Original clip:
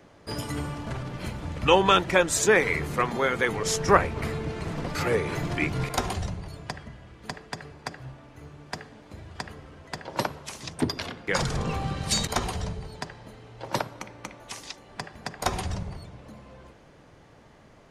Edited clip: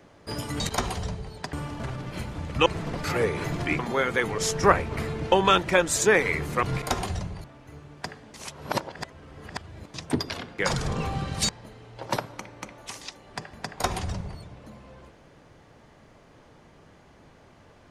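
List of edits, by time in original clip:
1.73–3.04 swap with 4.57–5.7
6.51–8.13 cut
9.03–10.63 reverse
12.18–13.11 move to 0.6

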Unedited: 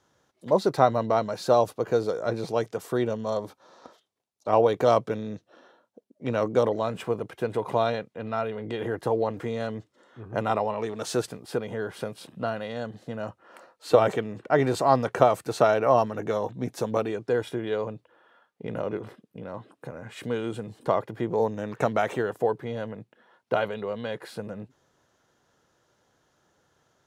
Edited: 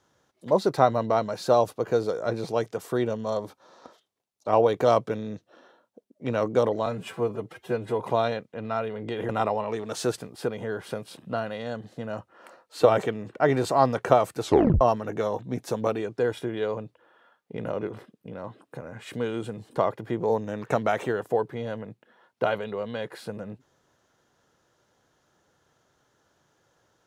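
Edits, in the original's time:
6.86–7.62 stretch 1.5×
8.91–10.39 cut
15.52 tape stop 0.39 s

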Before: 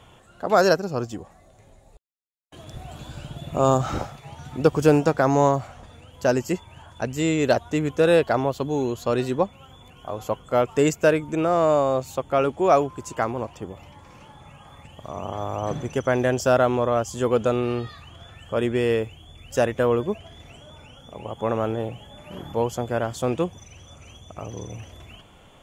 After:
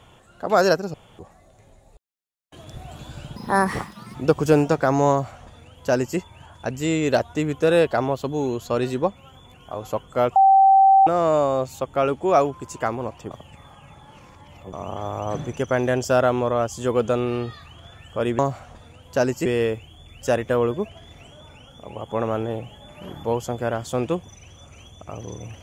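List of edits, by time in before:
0.94–1.19 room tone
3.36–4.51 speed 146%
5.47–6.54 copy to 18.75
10.72–11.43 bleep 776 Hz -10 dBFS
13.67–15.09 reverse

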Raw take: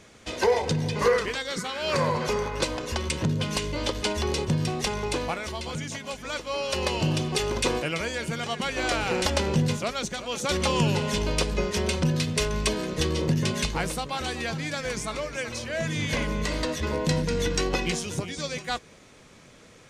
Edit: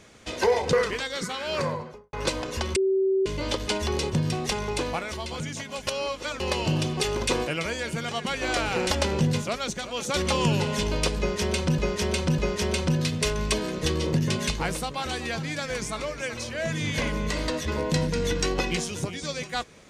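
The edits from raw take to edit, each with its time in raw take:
0.73–1.08 cut
1.75–2.48 studio fade out
3.11–3.61 bleep 384 Hz -19.5 dBFS
6.22–6.75 reverse
11.53–12.13 loop, 3 plays

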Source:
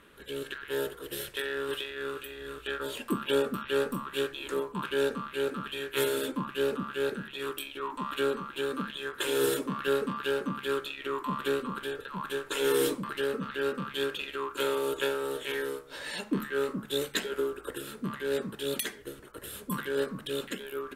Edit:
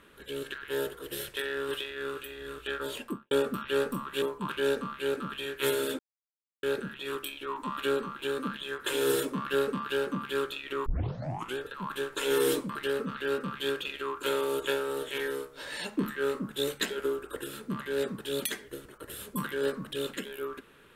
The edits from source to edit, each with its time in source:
2.95–3.31 studio fade out
4.22–4.56 cut
6.33–6.97 mute
11.2 tape start 0.71 s

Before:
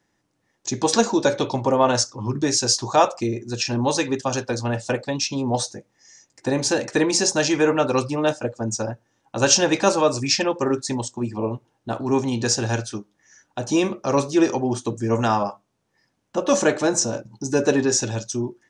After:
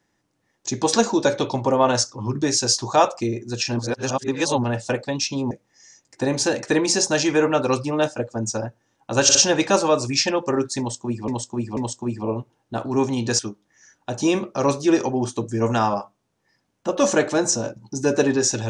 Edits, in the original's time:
3.79–4.64 reverse
5.51–5.76 cut
9.48 stutter 0.06 s, 3 plays
10.92–11.41 loop, 3 plays
12.54–12.88 cut

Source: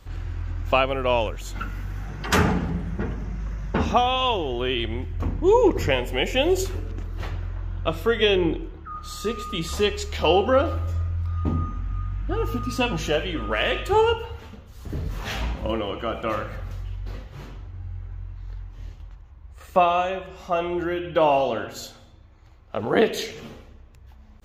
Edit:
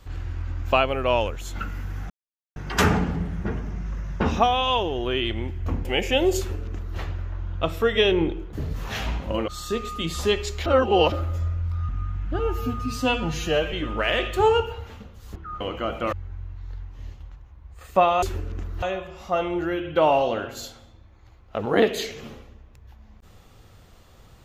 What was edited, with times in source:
2.1 insert silence 0.46 s
5.39–6.09 cut
6.62–7.22 copy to 20.02
8.77–9.02 swap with 14.88–15.83
10.2–10.66 reverse
11.43–11.86 cut
12.36–13.25 stretch 1.5×
16.35–17.92 cut

